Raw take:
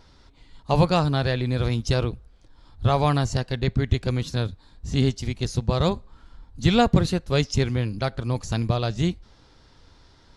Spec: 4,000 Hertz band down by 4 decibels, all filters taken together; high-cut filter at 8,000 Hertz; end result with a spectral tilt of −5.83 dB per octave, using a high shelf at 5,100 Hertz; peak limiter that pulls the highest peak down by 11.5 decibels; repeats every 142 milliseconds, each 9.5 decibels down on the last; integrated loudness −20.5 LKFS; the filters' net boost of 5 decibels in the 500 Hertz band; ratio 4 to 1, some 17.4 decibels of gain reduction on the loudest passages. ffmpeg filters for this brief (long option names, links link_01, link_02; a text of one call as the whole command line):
ffmpeg -i in.wav -af "lowpass=8000,equalizer=frequency=500:width_type=o:gain=6,equalizer=frequency=4000:width_type=o:gain=-8,highshelf=frequency=5100:gain=8,acompressor=threshold=-33dB:ratio=4,alimiter=level_in=7.5dB:limit=-24dB:level=0:latency=1,volume=-7.5dB,aecho=1:1:142|284|426|568:0.335|0.111|0.0365|0.012,volume=21.5dB" out.wav